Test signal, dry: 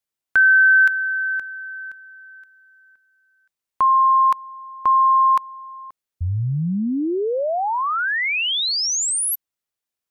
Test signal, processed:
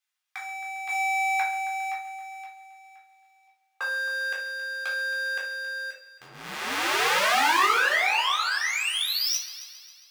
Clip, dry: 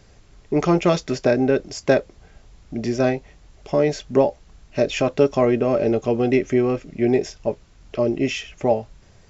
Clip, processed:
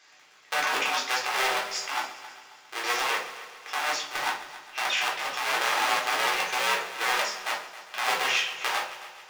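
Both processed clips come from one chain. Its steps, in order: cycle switcher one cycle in 2, inverted; HPF 1500 Hz 12 dB/oct; high shelf 6200 Hz -10.5 dB; negative-ratio compressor -31 dBFS, ratio -1; on a send: multi-head echo 0.135 s, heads first and second, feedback 52%, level -17.5 dB; on the sum: shoebox room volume 400 m³, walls furnished, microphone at 3.8 m; gain -1.5 dB

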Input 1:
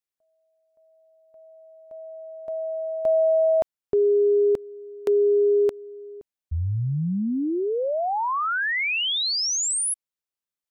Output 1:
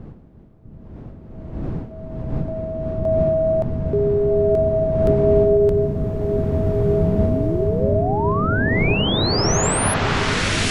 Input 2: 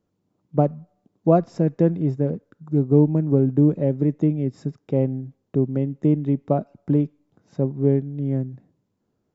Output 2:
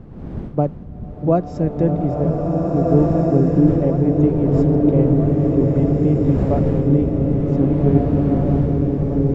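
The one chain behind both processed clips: wind noise 200 Hz -30 dBFS; repeats that get brighter 0.649 s, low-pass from 200 Hz, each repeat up 1 oct, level -3 dB; bloom reverb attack 1.84 s, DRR -1.5 dB

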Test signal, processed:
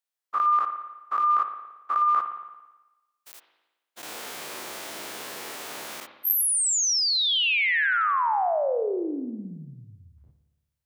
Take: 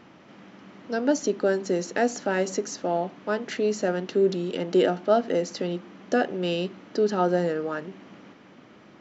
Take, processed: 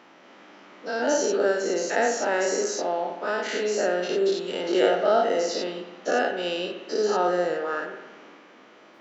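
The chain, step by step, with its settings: spectral dilation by 0.12 s; HPF 390 Hz 12 dB/oct; spring tank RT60 1.1 s, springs 56 ms, chirp 40 ms, DRR 7 dB; gain -2.5 dB

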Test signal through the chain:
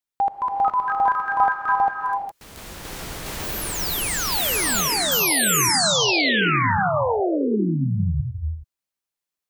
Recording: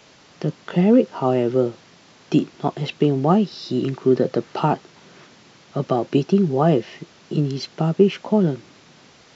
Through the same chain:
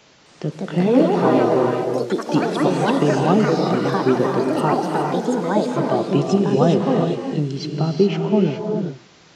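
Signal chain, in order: echoes that change speed 0.26 s, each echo +4 st, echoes 3; non-linear reverb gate 0.44 s rising, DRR 2.5 dB; gain -1.5 dB

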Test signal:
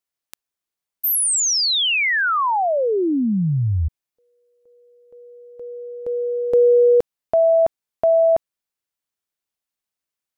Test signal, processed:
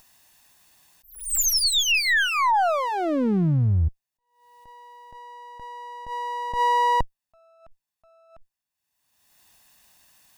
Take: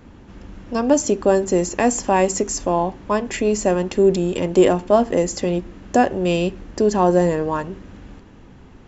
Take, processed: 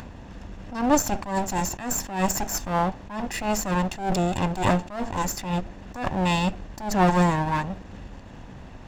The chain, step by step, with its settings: minimum comb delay 1.1 ms; upward compressor, threshold -34 dBFS; attack slew limiter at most 110 dB/s

